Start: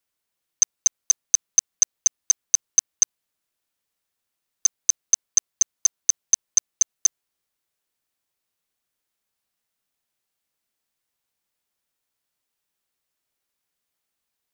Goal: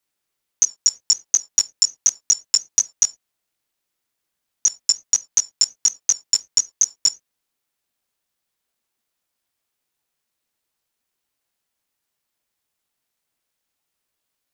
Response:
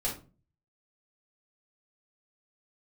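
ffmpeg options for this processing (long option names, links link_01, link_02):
-filter_complex "[0:a]flanger=delay=17.5:depth=2.9:speed=0.21,asplit=2[link_01][link_02];[1:a]atrim=start_sample=2205,afade=type=out:start_time=0.16:duration=0.01,atrim=end_sample=7497[link_03];[link_02][link_03]afir=irnorm=-1:irlink=0,volume=-18dB[link_04];[link_01][link_04]amix=inputs=2:normalize=0,aeval=exprs='val(0)*sin(2*PI*550*n/s+550*0.6/5.5*sin(2*PI*5.5*n/s))':channel_layout=same,volume=7.5dB"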